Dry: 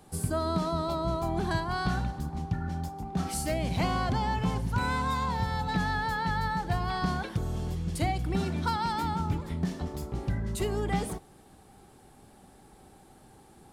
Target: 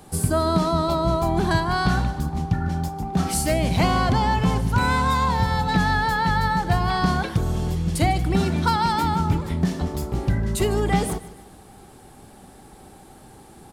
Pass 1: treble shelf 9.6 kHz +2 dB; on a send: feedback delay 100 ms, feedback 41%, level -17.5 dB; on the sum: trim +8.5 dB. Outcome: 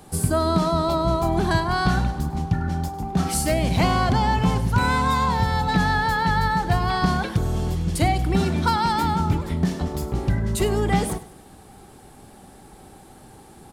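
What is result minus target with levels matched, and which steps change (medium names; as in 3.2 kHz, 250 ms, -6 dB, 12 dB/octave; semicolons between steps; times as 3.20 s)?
echo 51 ms early
change: feedback delay 151 ms, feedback 41%, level -17.5 dB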